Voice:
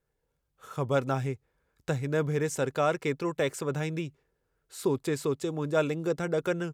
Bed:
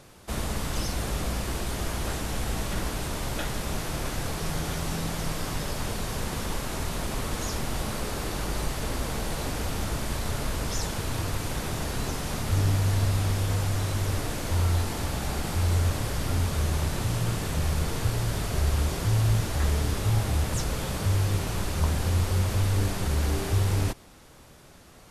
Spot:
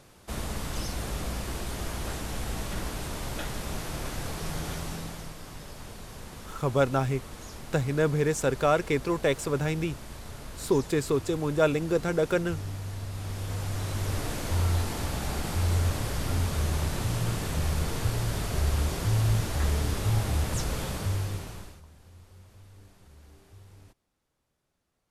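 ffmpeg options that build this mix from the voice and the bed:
-filter_complex "[0:a]adelay=5850,volume=1.41[s0];[1:a]volume=2.24,afade=t=out:st=4.72:d=0.62:silence=0.375837,afade=t=in:st=13.09:d=1.2:silence=0.298538,afade=t=out:st=20.8:d=1.02:silence=0.0501187[s1];[s0][s1]amix=inputs=2:normalize=0"

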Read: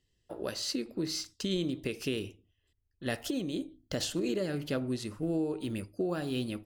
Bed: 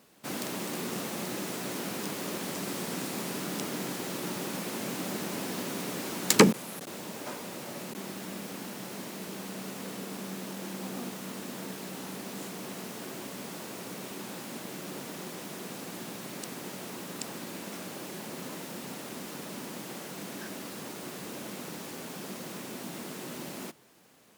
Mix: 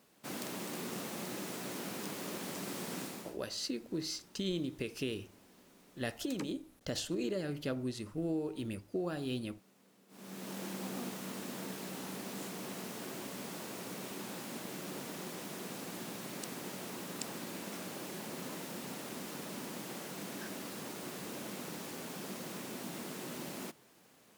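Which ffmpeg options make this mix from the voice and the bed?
-filter_complex "[0:a]adelay=2950,volume=0.631[s0];[1:a]volume=7.94,afade=t=out:st=3:d=0.37:silence=0.0891251,afade=t=in:st=10.08:d=0.48:silence=0.0630957[s1];[s0][s1]amix=inputs=2:normalize=0"

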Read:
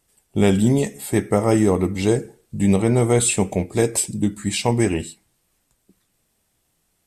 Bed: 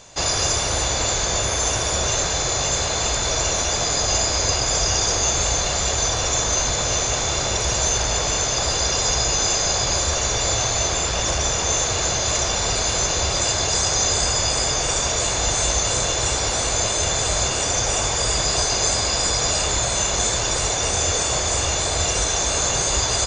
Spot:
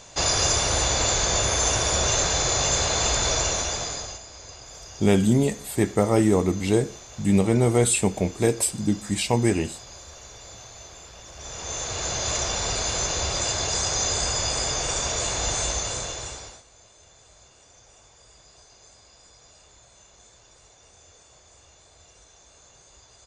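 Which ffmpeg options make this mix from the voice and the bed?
-filter_complex "[0:a]adelay=4650,volume=0.75[s0];[1:a]volume=6.68,afade=t=out:st=3.26:d=0.94:silence=0.0841395,afade=t=in:st=11.33:d=0.95:silence=0.133352,afade=t=out:st=15.56:d=1.07:silence=0.0421697[s1];[s0][s1]amix=inputs=2:normalize=0"

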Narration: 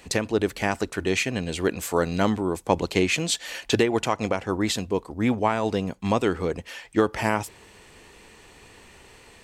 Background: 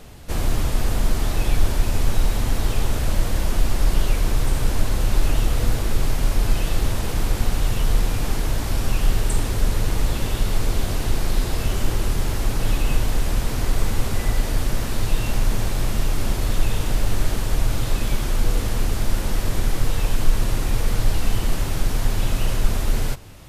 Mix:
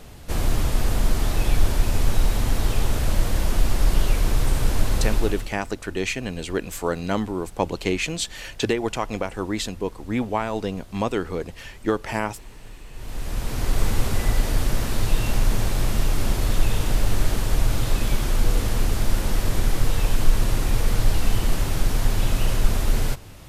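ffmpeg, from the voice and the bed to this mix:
-filter_complex "[0:a]adelay=4900,volume=0.794[s0];[1:a]volume=11.9,afade=t=out:st=5.02:d=0.5:silence=0.0841395,afade=t=in:st=12.93:d=0.92:silence=0.0794328[s1];[s0][s1]amix=inputs=2:normalize=0"

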